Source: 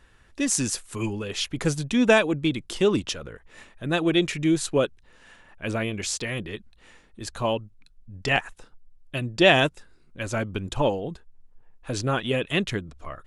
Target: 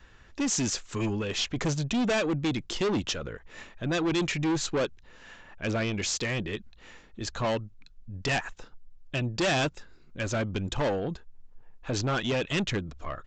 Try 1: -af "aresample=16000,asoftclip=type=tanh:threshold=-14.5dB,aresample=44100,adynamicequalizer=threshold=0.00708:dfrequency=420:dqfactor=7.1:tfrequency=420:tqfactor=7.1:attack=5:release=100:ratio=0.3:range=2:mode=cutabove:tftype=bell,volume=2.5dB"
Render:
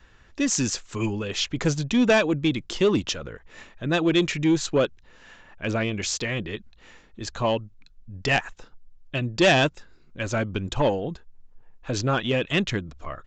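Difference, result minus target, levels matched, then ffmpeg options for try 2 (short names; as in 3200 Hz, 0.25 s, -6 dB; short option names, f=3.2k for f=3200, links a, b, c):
soft clip: distortion -9 dB
-af "aresample=16000,asoftclip=type=tanh:threshold=-26dB,aresample=44100,adynamicequalizer=threshold=0.00708:dfrequency=420:dqfactor=7.1:tfrequency=420:tqfactor=7.1:attack=5:release=100:ratio=0.3:range=2:mode=cutabove:tftype=bell,volume=2.5dB"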